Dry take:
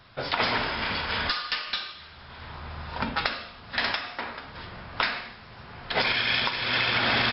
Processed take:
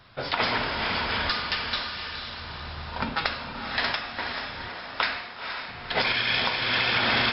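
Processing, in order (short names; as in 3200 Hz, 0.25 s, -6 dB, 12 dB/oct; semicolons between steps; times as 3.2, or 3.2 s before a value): 4.68–5.68 HPF 300 Hz 12 dB/oct; on a send: diffused feedback echo 0.492 s, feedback 46%, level -6 dB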